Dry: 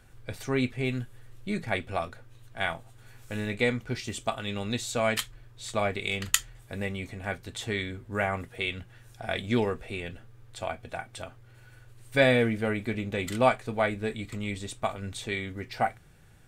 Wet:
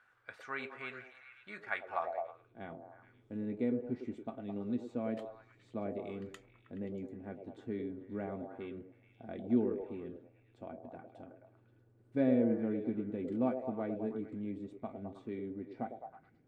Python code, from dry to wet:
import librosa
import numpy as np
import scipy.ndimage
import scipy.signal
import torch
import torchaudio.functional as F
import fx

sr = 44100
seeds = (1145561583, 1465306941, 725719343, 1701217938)

y = fx.echo_stepped(x, sr, ms=106, hz=460.0, octaves=0.7, feedback_pct=70, wet_db=-2.5)
y = fx.filter_sweep_bandpass(y, sr, from_hz=1400.0, to_hz=270.0, start_s=1.82, end_s=2.62, q=2.5)